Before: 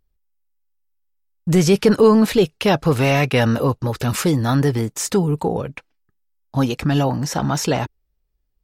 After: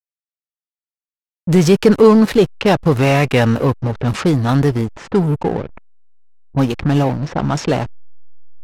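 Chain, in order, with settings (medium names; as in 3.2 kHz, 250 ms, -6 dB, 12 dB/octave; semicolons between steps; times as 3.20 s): hysteresis with a dead band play -21 dBFS; level-controlled noise filter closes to 380 Hz, open at -16 dBFS; trim +3.5 dB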